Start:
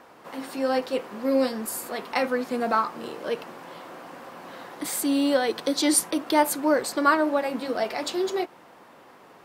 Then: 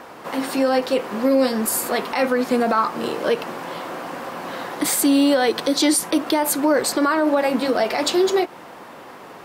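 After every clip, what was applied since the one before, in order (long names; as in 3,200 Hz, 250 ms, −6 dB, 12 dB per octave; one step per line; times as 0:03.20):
in parallel at −1 dB: downward compressor, threshold −29 dBFS, peak gain reduction 14.5 dB
on the sum: brickwall limiter −15 dBFS, peak gain reduction 9.5 dB
level +5.5 dB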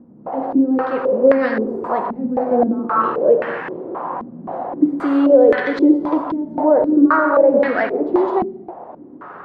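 on a send at −3.5 dB: convolution reverb, pre-delay 3 ms
on the sum: low-pass on a step sequencer 3.8 Hz 220–1,800 Hz
level −2 dB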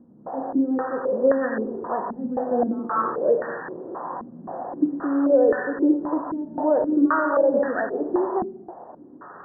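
linear-phase brick-wall low-pass 1,900 Hz
level −6.5 dB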